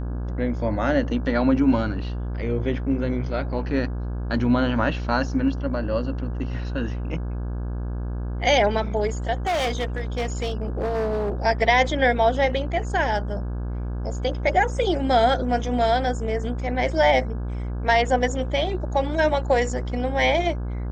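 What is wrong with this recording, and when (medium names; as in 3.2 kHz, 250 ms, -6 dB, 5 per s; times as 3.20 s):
buzz 60 Hz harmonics 28 -28 dBFS
9.46–11.33 s: clipped -20.5 dBFS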